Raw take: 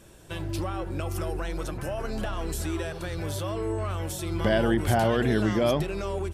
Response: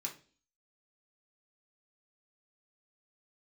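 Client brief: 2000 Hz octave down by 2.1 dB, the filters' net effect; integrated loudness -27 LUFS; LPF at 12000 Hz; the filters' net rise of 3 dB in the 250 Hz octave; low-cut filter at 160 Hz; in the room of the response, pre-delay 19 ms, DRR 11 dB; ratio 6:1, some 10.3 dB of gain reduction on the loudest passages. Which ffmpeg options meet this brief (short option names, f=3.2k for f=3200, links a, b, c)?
-filter_complex "[0:a]highpass=160,lowpass=12k,equalizer=f=250:t=o:g=5,equalizer=f=2k:t=o:g=-3,acompressor=threshold=-29dB:ratio=6,asplit=2[a][b];[1:a]atrim=start_sample=2205,adelay=19[c];[b][c]afir=irnorm=-1:irlink=0,volume=-10dB[d];[a][d]amix=inputs=2:normalize=0,volume=7dB"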